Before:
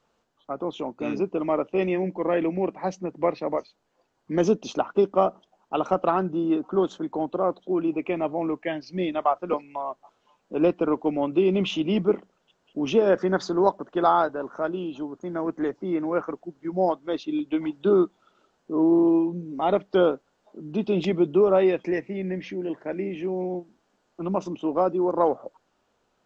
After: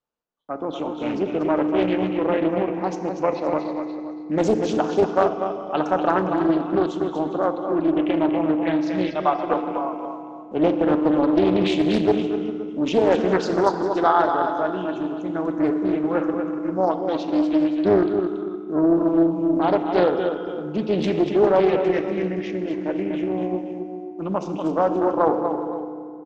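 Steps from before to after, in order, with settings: gate with hold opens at -51 dBFS; multi-tap echo 240/404/519 ms -7/-18.5/-15.5 dB; FDN reverb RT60 2.4 s, low-frequency decay 1.5×, high-frequency decay 0.7×, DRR 7 dB; loudspeaker Doppler distortion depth 0.43 ms; trim +1.5 dB

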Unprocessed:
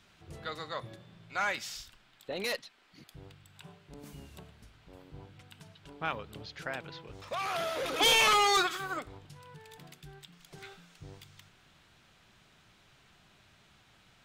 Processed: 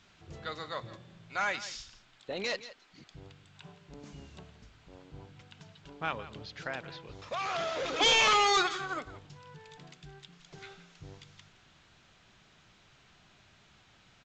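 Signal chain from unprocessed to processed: delay 169 ms -16 dB; A-law 128 kbps 16 kHz

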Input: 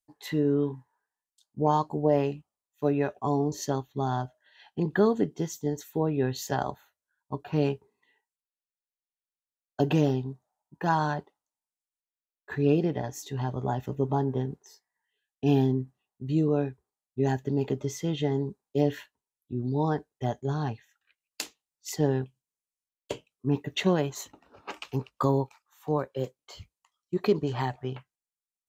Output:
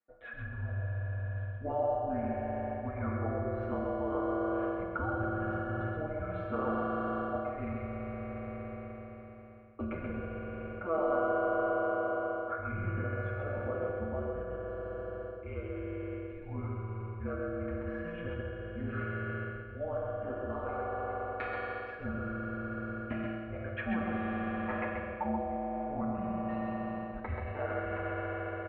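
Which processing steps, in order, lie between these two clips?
comb 7.4 ms, depth 90%; reverberation RT60 4.3 s, pre-delay 3 ms, DRR -4 dB; reverse; compression 5:1, threshold -27 dBFS, peak gain reduction 14.5 dB; reverse; mistuned SSB -330 Hz 590–2300 Hz; dynamic bell 420 Hz, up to -5 dB, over -47 dBFS, Q 1.6; in parallel at -3 dB: peak limiter -31.5 dBFS, peak gain reduction 10 dB; on the sum: delay 132 ms -4 dB

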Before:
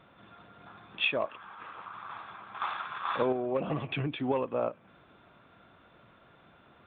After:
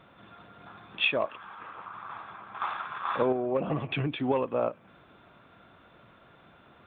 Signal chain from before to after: 1.59–3.91 s: treble shelf 3.9 kHz -11.5 dB; trim +2.5 dB

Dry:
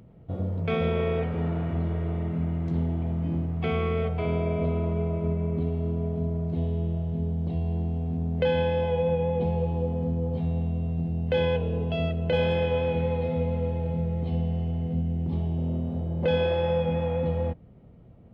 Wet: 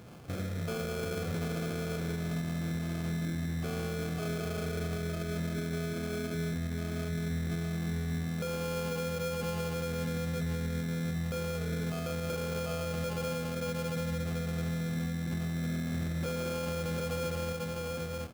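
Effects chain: one-bit delta coder 32 kbps, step -42.5 dBFS; 5.93–6.35 s: brick-wall FIR high-pass 200 Hz; compression, threshold -29 dBFS, peak gain reduction 8 dB; comb of notches 1 kHz; delay 742 ms -3.5 dB; peak limiter -27 dBFS, peak gain reduction 8 dB; sample-rate reducer 1.9 kHz, jitter 0%

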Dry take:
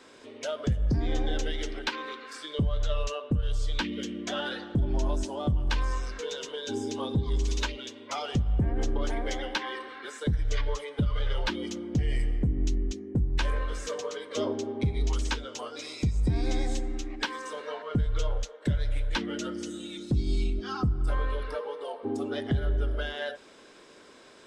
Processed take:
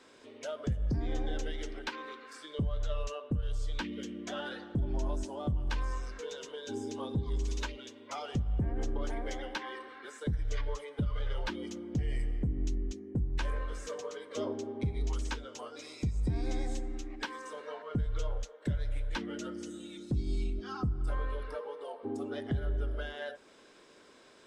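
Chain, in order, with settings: dynamic bell 3.7 kHz, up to -4 dB, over -52 dBFS, Q 0.93; trim -5.5 dB

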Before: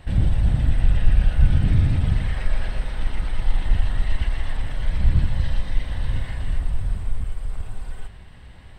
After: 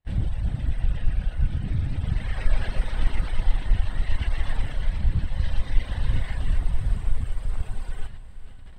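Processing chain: reverb removal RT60 0.77 s; gate -41 dBFS, range -32 dB; gain riding within 5 dB 0.5 s; echo that smears into a reverb 490 ms, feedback 54%, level -14 dB; loudspeaker Doppler distortion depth 0.14 ms; trim -2.5 dB

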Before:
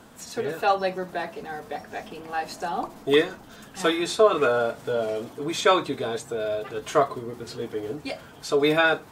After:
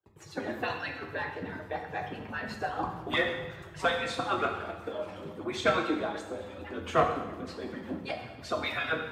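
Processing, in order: harmonic-percussive separation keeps percussive; dynamic bell 400 Hz, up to -6 dB, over -43 dBFS, Q 1.3; hard clipper -19 dBFS, distortion -14 dB; tone controls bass +11 dB, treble -15 dB; gate -50 dBFS, range -39 dB; frequency shift +33 Hz; high-pass 73 Hz; plate-style reverb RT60 1.1 s, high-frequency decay 0.95×, pre-delay 0 ms, DRR 2.5 dB

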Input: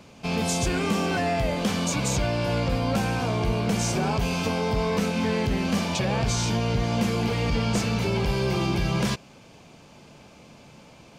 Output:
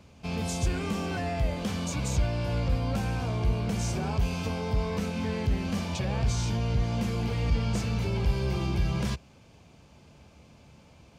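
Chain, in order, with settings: peaking EQ 68 Hz +14.5 dB 1.3 oct; trim -8 dB

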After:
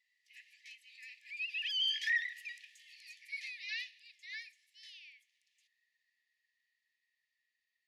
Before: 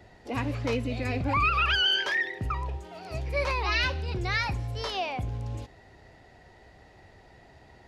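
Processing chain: Doppler pass-by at 2.52 s, 8 m/s, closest 2.5 m; brick-wall FIR high-pass 1.7 kHz

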